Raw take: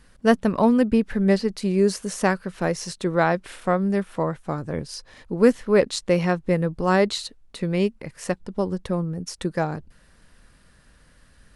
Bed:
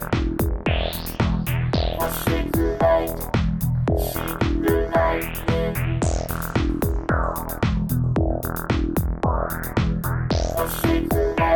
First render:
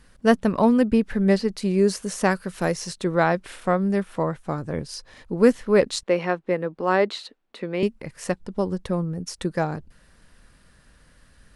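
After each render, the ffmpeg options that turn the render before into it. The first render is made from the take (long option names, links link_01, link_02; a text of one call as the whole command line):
ffmpeg -i in.wav -filter_complex "[0:a]asettb=1/sr,asplit=3[link_01][link_02][link_03];[link_01]atrim=end=2.314[link_04];[link_02]atrim=start=2.31:end=2.74,asetpts=PTS-STARTPTS,afade=type=in:duration=0.004:curve=qsin,afade=type=out:start_time=0.426:duration=0.004:curve=qsin,highshelf=frequency=6400:gain=12[link_05];[link_03]atrim=start=2.736[link_06];[link_04][link_05]acrossfade=duration=0.004:curve1=hsin:curve2=qsin[link_07];[link_07][link_06]acrossfade=duration=0.004:curve1=qsin:curve2=hsin,asettb=1/sr,asplit=3[link_08][link_09][link_10];[link_08]atrim=end=6.034[link_11];[link_09]atrim=start=6.03:end=7.83,asetpts=PTS-STARTPTS,afade=type=in:duration=0.004:curve=qsin,afade=type=out:start_time=1.796:duration=0.004:curve=qsin,acrossover=split=220 3900:gain=0.0631 1 0.2[link_12][link_13][link_14];[link_12][link_13][link_14]amix=inputs=3:normalize=0[link_15];[link_10]atrim=start=7.826[link_16];[link_11][link_15]acrossfade=duration=0.004:curve1=hsin:curve2=qsin[link_17];[link_17][link_16]acrossfade=duration=0.004:curve1=qsin:curve2=hsin" out.wav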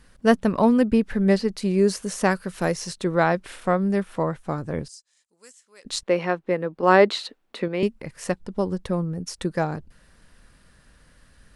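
ffmpeg -i in.wav -filter_complex "[0:a]asettb=1/sr,asplit=3[link_01][link_02][link_03];[link_01]atrim=end=4.884[link_04];[link_02]atrim=start=4.88:end=5.85,asetpts=PTS-STARTPTS,afade=type=in:duration=0.004:curve=qsin,afade=type=out:start_time=0.966:duration=0.004:curve=qsin,bandpass=frequency=7600:width_type=q:width=3.7[link_05];[link_03]atrim=start=5.846[link_06];[link_04][link_05]acrossfade=duration=0.004:curve1=hsin:curve2=qsin[link_07];[link_07][link_06]acrossfade=duration=0.004:curve1=qsin:curve2=hsin,asplit=3[link_08][link_09][link_10];[link_08]atrim=end=6.832[link_11];[link_09]atrim=start=6.828:end=7.682,asetpts=PTS-STARTPTS,volume=5dB[link_12];[link_10]atrim=start=7.678[link_13];[link_11][link_12]acrossfade=duration=0.004:curve1=hsin:curve2=hsin[link_14];[link_14][link_13]acrossfade=duration=0.004:curve1=hsin:curve2=hsin" out.wav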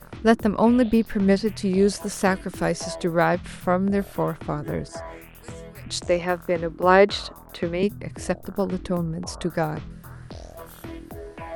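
ffmpeg -i in.wav -i bed.wav -filter_complex "[1:a]volume=-17.5dB[link_01];[0:a][link_01]amix=inputs=2:normalize=0" out.wav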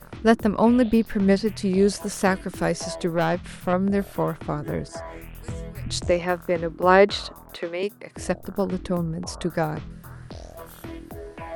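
ffmpeg -i in.wav -filter_complex "[0:a]asettb=1/sr,asplit=3[link_01][link_02][link_03];[link_01]atrim=end=3.064[link_04];[link_02]atrim=start=3.06:end=3.73,asetpts=PTS-STARTPTS,afade=type=in:duration=0.004:curve=qsin,afade=type=out:start_time=0.666:duration=0.004:curve=qsin,aeval=exprs='(tanh(5.01*val(0)+0.35)-tanh(0.35))/5.01':channel_layout=same[link_05];[link_03]atrim=start=3.726[link_06];[link_04][link_05]acrossfade=duration=0.004:curve1=hsin:curve2=qsin[link_07];[link_07][link_06]acrossfade=duration=0.004:curve1=qsin:curve2=hsin,asettb=1/sr,asplit=3[link_08][link_09][link_10];[link_08]atrim=end=5.154[link_11];[link_09]atrim=start=5.15:end=6.11,asetpts=PTS-STARTPTS,afade=type=in:duration=0.004:curve=qsin,afade=type=out:start_time=0.956:duration=0.004:curve=qsin,lowshelf=frequency=180:gain=10.5[link_12];[link_10]atrim=start=6.106[link_13];[link_11][link_12]acrossfade=duration=0.004:curve1=hsin:curve2=qsin[link_14];[link_14][link_13]acrossfade=duration=0.004:curve1=qsin:curve2=hsin,asettb=1/sr,asplit=3[link_15][link_16][link_17];[link_15]atrim=end=7.564[link_18];[link_16]atrim=start=7.56:end=8.16,asetpts=PTS-STARTPTS,afade=type=in:duration=0.004:curve=qsin,afade=type=out:start_time=0.596:duration=0.004:curve=qsin,highpass=390[link_19];[link_17]atrim=start=8.156[link_20];[link_18][link_19]acrossfade=duration=0.004:curve1=hsin:curve2=qsin[link_21];[link_21][link_20]acrossfade=duration=0.004:curve1=qsin:curve2=hsin" out.wav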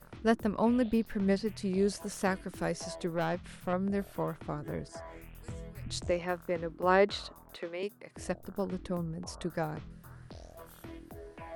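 ffmpeg -i in.wav -af "volume=-9.5dB" out.wav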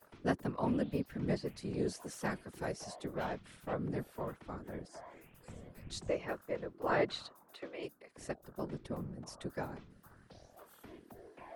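ffmpeg -i in.wav -filter_complex "[0:a]acrossover=split=210|1500|5100[link_01][link_02][link_03][link_04];[link_01]aeval=exprs='sgn(val(0))*max(abs(val(0))-0.00211,0)':channel_layout=same[link_05];[link_05][link_02][link_03][link_04]amix=inputs=4:normalize=0,afftfilt=real='hypot(re,im)*cos(2*PI*random(0))':imag='hypot(re,im)*sin(2*PI*random(1))':win_size=512:overlap=0.75" out.wav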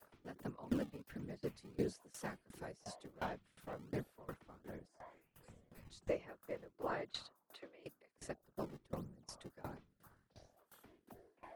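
ffmpeg -i in.wav -filter_complex "[0:a]acrossover=split=200[link_01][link_02];[link_01]acrusher=samples=25:mix=1:aa=0.000001:lfo=1:lforange=40:lforate=1.4[link_03];[link_03][link_02]amix=inputs=2:normalize=0,aeval=exprs='val(0)*pow(10,-23*if(lt(mod(2.8*n/s,1),2*abs(2.8)/1000),1-mod(2.8*n/s,1)/(2*abs(2.8)/1000),(mod(2.8*n/s,1)-2*abs(2.8)/1000)/(1-2*abs(2.8)/1000))/20)':channel_layout=same" out.wav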